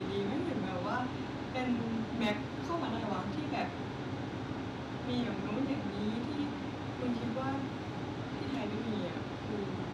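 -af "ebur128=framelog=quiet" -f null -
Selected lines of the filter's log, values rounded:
Integrated loudness:
  I:         -36.6 LUFS
  Threshold: -46.6 LUFS
Loudness range:
  LRA:         1.8 LU
  Threshold: -56.6 LUFS
  LRA low:   -37.3 LUFS
  LRA high:  -35.6 LUFS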